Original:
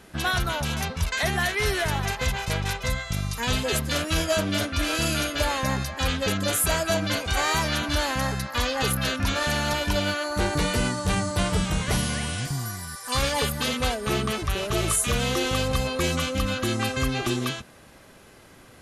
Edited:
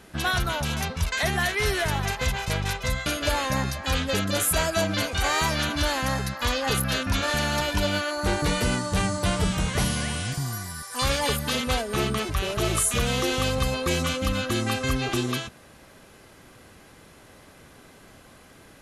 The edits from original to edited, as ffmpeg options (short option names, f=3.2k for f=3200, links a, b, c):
-filter_complex "[0:a]asplit=2[a][b];[a]atrim=end=3.062[c];[b]atrim=start=5.188[d];[c][d]acrossfade=d=0.004:c1=hsin:c2=hsin"